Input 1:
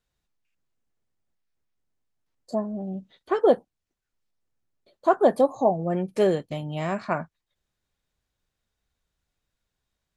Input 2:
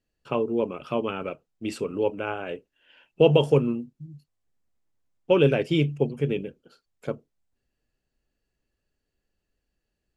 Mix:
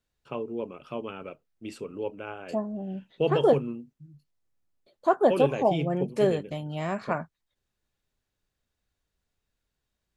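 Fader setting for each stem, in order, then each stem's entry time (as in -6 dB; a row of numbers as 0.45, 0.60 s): -2.5, -8.0 dB; 0.00, 0.00 s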